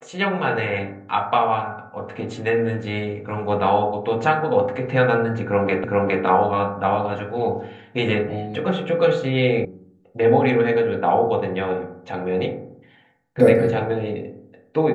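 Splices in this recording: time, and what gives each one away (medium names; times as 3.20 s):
5.84 s: repeat of the last 0.41 s
9.65 s: sound stops dead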